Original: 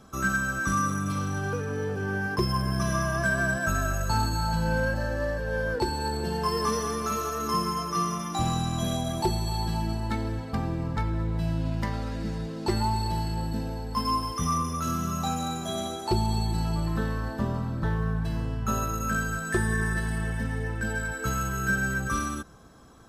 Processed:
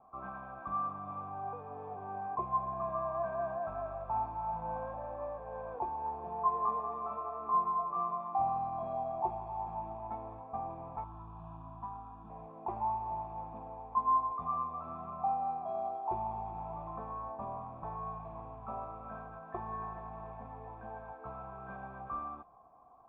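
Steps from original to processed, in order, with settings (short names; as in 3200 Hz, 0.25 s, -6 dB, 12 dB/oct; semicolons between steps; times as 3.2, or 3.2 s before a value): modulation noise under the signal 11 dB; vocal tract filter a; 11.04–12.3 fixed phaser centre 2100 Hz, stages 6; gain +6.5 dB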